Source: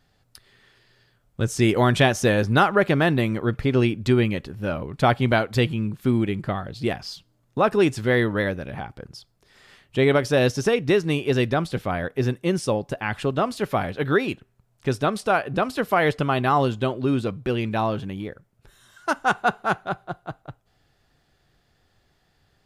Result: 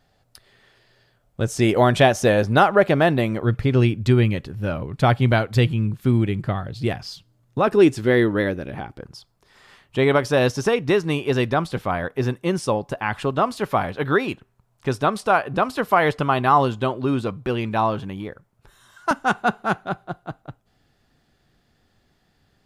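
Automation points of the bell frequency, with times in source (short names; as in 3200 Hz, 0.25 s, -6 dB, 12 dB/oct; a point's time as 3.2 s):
bell +6.5 dB 0.83 oct
650 Hz
from 3.43 s 110 Hz
from 7.67 s 330 Hz
from 9.03 s 1000 Hz
from 19.11 s 230 Hz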